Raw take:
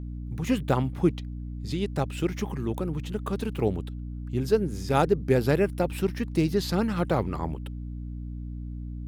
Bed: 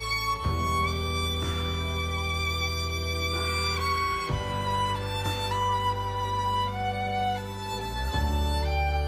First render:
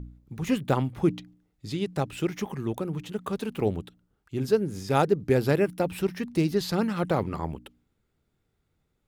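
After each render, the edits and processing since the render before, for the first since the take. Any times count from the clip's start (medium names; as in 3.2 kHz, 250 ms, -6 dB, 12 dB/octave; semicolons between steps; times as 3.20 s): de-hum 60 Hz, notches 5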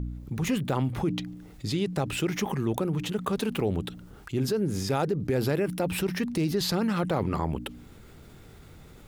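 peak limiter -18.5 dBFS, peak gain reduction 8.5 dB; level flattener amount 50%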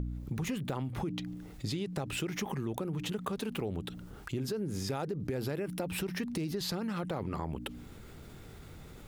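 compression, threshold -32 dBFS, peak gain reduction 10 dB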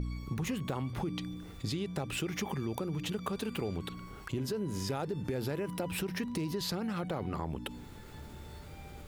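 add bed -25.5 dB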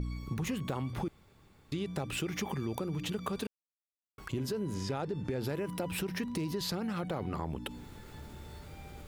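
1.08–1.72 s: room tone; 3.47–4.18 s: mute; 4.74–5.44 s: distance through air 50 m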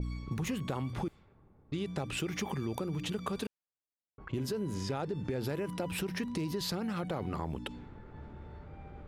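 level-controlled noise filter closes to 660 Hz, open at -32 dBFS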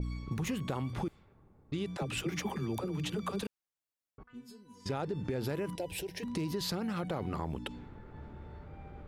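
1.97–3.43 s: phase dispersion lows, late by 53 ms, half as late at 350 Hz; 4.23–4.86 s: inharmonic resonator 240 Hz, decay 0.38 s, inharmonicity 0.002; 5.75–6.23 s: static phaser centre 520 Hz, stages 4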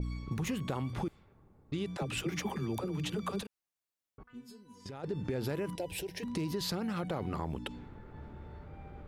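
3.42–5.04 s: compression 10:1, threshold -40 dBFS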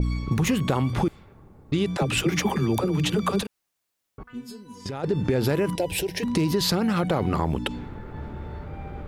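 trim +12 dB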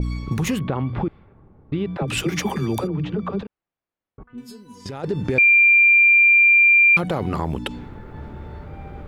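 0.59–2.08 s: distance through air 410 m; 2.87–4.38 s: tape spacing loss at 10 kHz 41 dB; 5.38–6.97 s: bleep 2.38 kHz -10 dBFS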